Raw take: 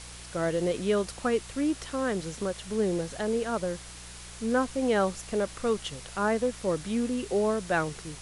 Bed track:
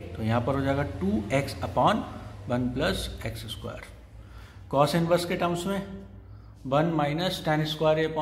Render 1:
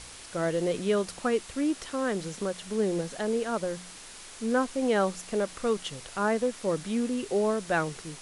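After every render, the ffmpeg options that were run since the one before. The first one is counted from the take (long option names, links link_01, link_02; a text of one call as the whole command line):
ffmpeg -i in.wav -af "bandreject=frequency=60:width_type=h:width=4,bandreject=frequency=120:width_type=h:width=4,bandreject=frequency=180:width_type=h:width=4" out.wav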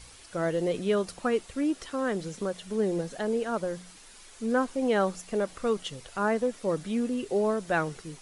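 ffmpeg -i in.wav -af "afftdn=noise_reduction=8:noise_floor=-46" out.wav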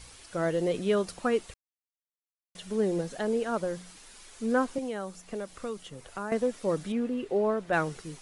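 ffmpeg -i in.wav -filter_complex "[0:a]asettb=1/sr,asplit=3[link_01][link_02][link_03];[link_01]atrim=end=4.784[link_04];[link_02]atrim=start=4.78:end=6.32,asetpts=PTS-STARTPTS,afade=type=in:duration=0.004:curve=qsin,afade=type=out:start_time=1.536:duration=0.004:curve=qsin,acrossover=split=170|2200|6700[link_05][link_06][link_07][link_08];[link_05]acompressor=threshold=-50dB:ratio=3[link_09];[link_06]acompressor=threshold=-36dB:ratio=3[link_10];[link_07]acompressor=threshold=-56dB:ratio=3[link_11];[link_08]acompressor=threshold=-56dB:ratio=3[link_12];[link_09][link_10][link_11][link_12]amix=inputs=4:normalize=0[link_13];[link_03]atrim=start=6.316[link_14];[link_04][link_13]acrossfade=duration=0.004:curve1=hsin:curve2=qsin[link_15];[link_15][link_14]acrossfade=duration=0.004:curve1=qsin:curve2=hsin,asettb=1/sr,asplit=3[link_16][link_17][link_18];[link_16]atrim=end=6.924[link_19];[link_17]atrim=start=6.92:end=7.73,asetpts=PTS-STARTPTS,afade=type=in:duration=0.004:curve=qsin,afade=type=out:start_time=0.806:duration=0.004:curve=qsin,bass=frequency=250:gain=-3,treble=frequency=4000:gain=-13[link_20];[link_18]atrim=start=7.726[link_21];[link_19][link_20]acrossfade=duration=0.004:curve1=hsin:curve2=qsin[link_22];[link_22][link_21]acrossfade=duration=0.004:curve1=qsin:curve2=hsin,asplit=3[link_23][link_24][link_25];[link_23]atrim=end=1.54,asetpts=PTS-STARTPTS,afade=type=out:start_time=1.536:duration=0.004:curve=hsin[link_26];[link_24]atrim=start=1.54:end=2.55,asetpts=PTS-STARTPTS,volume=0[link_27];[link_25]atrim=start=2.55,asetpts=PTS-STARTPTS,afade=type=in:duration=0.004:curve=hsin[link_28];[link_26][link_27][link_28]concat=n=3:v=0:a=1" out.wav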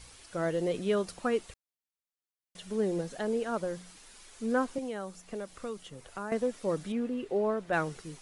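ffmpeg -i in.wav -af "volume=-2.5dB" out.wav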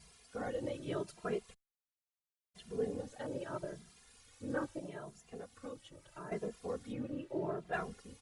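ffmpeg -i in.wav -filter_complex "[0:a]afftfilt=real='hypot(re,im)*cos(2*PI*random(0))':imag='hypot(re,im)*sin(2*PI*random(1))':win_size=512:overlap=0.75,asplit=2[link_01][link_02];[link_02]adelay=2.5,afreqshift=0.78[link_03];[link_01][link_03]amix=inputs=2:normalize=1" out.wav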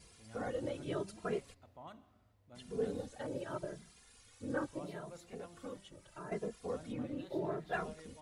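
ffmpeg -i in.wav -i bed.wav -filter_complex "[1:a]volume=-30dB[link_01];[0:a][link_01]amix=inputs=2:normalize=0" out.wav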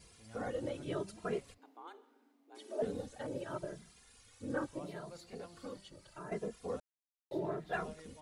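ffmpeg -i in.wav -filter_complex "[0:a]asettb=1/sr,asplit=3[link_01][link_02][link_03];[link_01]atrim=end=1.584[link_04];[link_02]atrim=start=1.58:end=2.82,asetpts=PTS-STARTPTS,afade=type=in:duration=0.004:curve=qsin,afade=type=out:start_time=1.236:duration=0.004:curve=qsin,afreqshift=180[link_05];[link_03]atrim=start=2.816[link_06];[link_04][link_05]acrossfade=duration=0.004:curve1=hsin:curve2=qsin[link_07];[link_07][link_06]acrossfade=duration=0.004:curve1=qsin:curve2=hsin,asettb=1/sr,asplit=3[link_08][link_09][link_10];[link_08]atrim=end=4.964[link_11];[link_09]atrim=start=4.96:end=6.13,asetpts=PTS-STARTPTS,afade=type=in:duration=0.004:curve=qsin,afade=type=out:start_time=1.166:duration=0.004:curve=qsin,equalizer=frequency=4500:width=6.4:gain=12.5[link_12];[link_10]atrim=start=6.126[link_13];[link_11][link_12]acrossfade=duration=0.004:curve1=hsin:curve2=qsin[link_14];[link_14][link_13]acrossfade=duration=0.004:curve1=qsin:curve2=hsin,asplit=3[link_15][link_16][link_17];[link_15]atrim=end=6.8,asetpts=PTS-STARTPTS,afade=type=out:start_time=6.796:duration=0.004:curve=hsin[link_18];[link_16]atrim=start=6.8:end=7.31,asetpts=PTS-STARTPTS,volume=0[link_19];[link_17]atrim=start=7.31,asetpts=PTS-STARTPTS,afade=type=in:duration=0.004:curve=hsin[link_20];[link_18][link_19][link_20]concat=n=3:v=0:a=1" out.wav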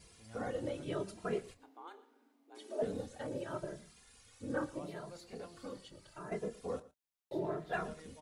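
ffmpeg -i in.wav -filter_complex "[0:a]asplit=2[link_01][link_02];[link_02]adelay=26,volume=-13dB[link_03];[link_01][link_03]amix=inputs=2:normalize=0,aecho=1:1:115:0.106" out.wav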